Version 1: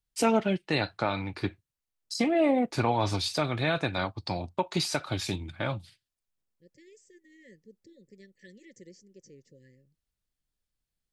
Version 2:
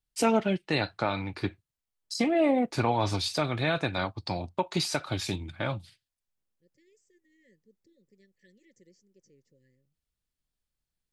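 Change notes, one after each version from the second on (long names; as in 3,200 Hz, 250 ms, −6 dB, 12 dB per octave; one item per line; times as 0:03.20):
second voice −9.5 dB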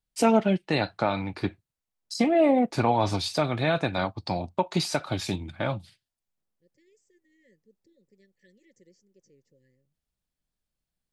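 first voice: add parametric band 200 Hz +4.5 dB 1 octave
master: add parametric band 700 Hz +4.5 dB 1.1 octaves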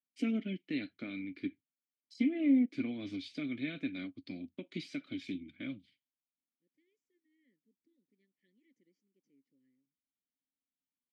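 master: add formant filter i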